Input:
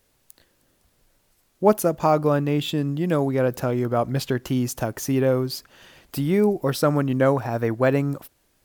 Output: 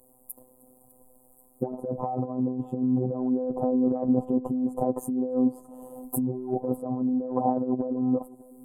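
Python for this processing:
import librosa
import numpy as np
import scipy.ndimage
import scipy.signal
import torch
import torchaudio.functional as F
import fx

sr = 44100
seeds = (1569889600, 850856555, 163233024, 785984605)

y = scipy.signal.sosfilt(scipy.signal.cheby2(4, 40, [1500.0, 5900.0], 'bandstop', fs=sr, output='sos'), x)
y = fx.env_lowpass_down(y, sr, base_hz=1100.0, full_db=-20.0)
y = fx.low_shelf(y, sr, hz=130.0, db=-9.5)
y = y + 0.86 * np.pad(y, (int(4.0 * sr / 1000.0), 0))[:len(y)]
y = fx.over_compress(y, sr, threshold_db=-28.0, ratio=-1.0)
y = fx.robotise(y, sr, hz=127.0)
y = y + 10.0 ** (-22.0 / 20.0) * np.pad(y, (int(602 * sr / 1000.0), 0))[:len(y)]
y = y * 10.0 ** (3.5 / 20.0)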